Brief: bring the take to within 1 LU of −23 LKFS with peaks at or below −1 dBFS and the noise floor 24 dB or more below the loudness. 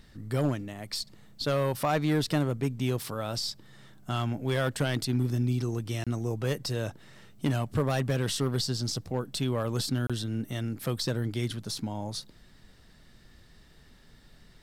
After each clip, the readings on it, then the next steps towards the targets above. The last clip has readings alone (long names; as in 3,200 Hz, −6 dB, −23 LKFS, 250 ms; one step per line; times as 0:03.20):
share of clipped samples 0.7%; peaks flattened at −19.5 dBFS; number of dropouts 2; longest dropout 26 ms; integrated loudness −30.5 LKFS; sample peak −19.5 dBFS; target loudness −23.0 LKFS
→ clipped peaks rebuilt −19.5 dBFS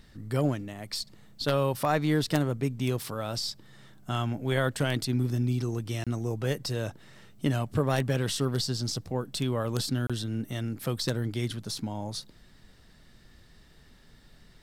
share of clipped samples 0.0%; number of dropouts 2; longest dropout 26 ms
→ repair the gap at 0:06.04/0:10.07, 26 ms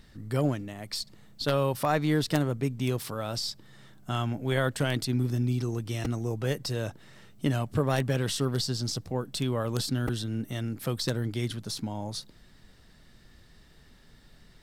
number of dropouts 0; integrated loudness −30.0 LKFS; sample peak −10.5 dBFS; target loudness −23.0 LKFS
→ level +7 dB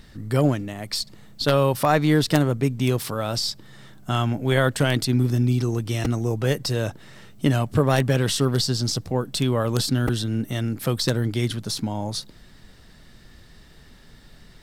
integrated loudness −23.0 LKFS; sample peak −3.5 dBFS; background noise floor −49 dBFS